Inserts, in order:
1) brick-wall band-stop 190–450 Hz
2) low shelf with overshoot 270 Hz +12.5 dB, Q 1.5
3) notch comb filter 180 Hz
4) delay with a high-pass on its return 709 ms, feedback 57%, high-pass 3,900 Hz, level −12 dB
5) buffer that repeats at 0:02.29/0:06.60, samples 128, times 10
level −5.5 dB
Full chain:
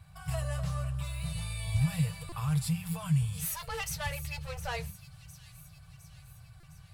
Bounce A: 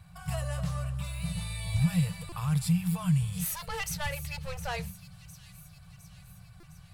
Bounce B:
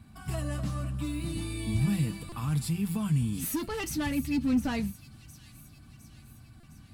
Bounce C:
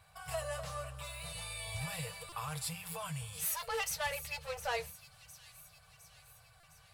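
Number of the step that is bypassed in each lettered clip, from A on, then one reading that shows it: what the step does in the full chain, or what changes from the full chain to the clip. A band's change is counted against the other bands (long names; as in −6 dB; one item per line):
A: 3, 250 Hz band +3.5 dB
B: 1, 250 Hz band +9.0 dB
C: 2, 250 Hz band −15.5 dB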